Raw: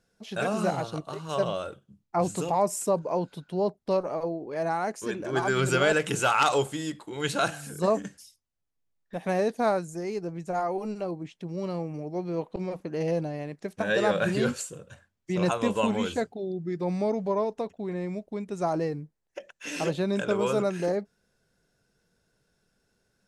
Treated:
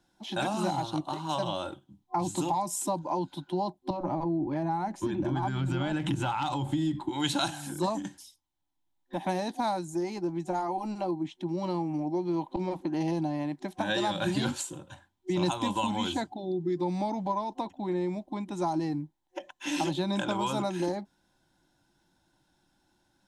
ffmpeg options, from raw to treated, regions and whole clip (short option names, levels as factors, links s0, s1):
-filter_complex "[0:a]asettb=1/sr,asplit=3[s0][s1][s2];[s0]atrim=end=3.904[s3];[s1]atrim=start=3.9:end=7.09,asetpts=PTS-STARTPTS,afade=t=in:d=0.004:c=qsin,afade=t=out:st=3.186:d=0.004:c=qsin,bass=f=250:g=15,treble=f=4000:g=-8,acompressor=threshold=0.0501:ratio=12:attack=3.2:release=140:knee=1:detection=peak,bandreject=f=187.4:t=h:w=4,bandreject=f=374.8:t=h:w=4,bandreject=f=562.2:t=h:w=4[s4];[s2]atrim=start=7.086[s5];[s3][s4]acrossfade=d=0.004:c1=hsin:c2=qsin[s6];[s6][s5]acrossfade=d=0.004:c1=qsin:c2=hsin,superequalizer=6b=2.82:7b=0.282:9b=3.55:13b=2,acrossover=split=180|3000[s7][s8][s9];[s8]acompressor=threshold=0.0398:ratio=6[s10];[s7][s10][s9]amix=inputs=3:normalize=0"